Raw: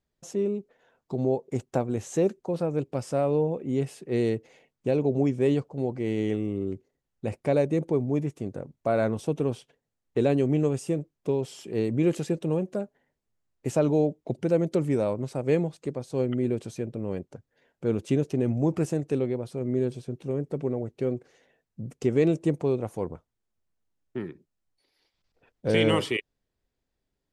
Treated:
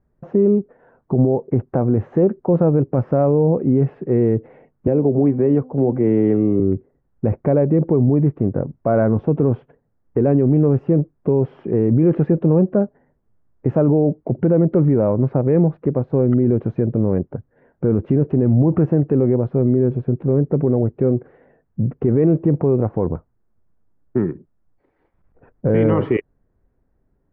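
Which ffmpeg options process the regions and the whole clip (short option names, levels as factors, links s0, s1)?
-filter_complex "[0:a]asettb=1/sr,asplit=3[s0][s1][s2];[s0]atrim=end=4.874[s3];[s1]atrim=start=4.87:end=6.6,asetpts=PTS-STARTPTS,afade=t=in:d=0.004:c=qsin,afade=t=out:st=1.726:d=0.004:c=qsin,bandreject=f=256.1:t=h:w=4,bandreject=f=512.2:t=h:w=4,bandreject=f=768.3:t=h:w=4,bandreject=f=1024.4:t=h:w=4,acrossover=split=190|410[s4][s5][s6];[s4]acompressor=threshold=0.00708:ratio=4[s7];[s5]acompressor=threshold=0.0316:ratio=4[s8];[s6]acompressor=threshold=0.02:ratio=4[s9];[s7][s8][s9]amix=inputs=3:normalize=0[s10];[s2]atrim=start=6.596[s11];[s3][s10]acrossfade=d=0.004:c1=hsin:c2=qsin[s12];[s12][s11]acrossfade=d=0.004:c1=qsin:c2=hsin,lowpass=f=1600:w=0.5412,lowpass=f=1600:w=1.3066,lowshelf=f=380:g=7.5,alimiter=level_in=7.08:limit=0.891:release=50:level=0:latency=1,volume=0.473"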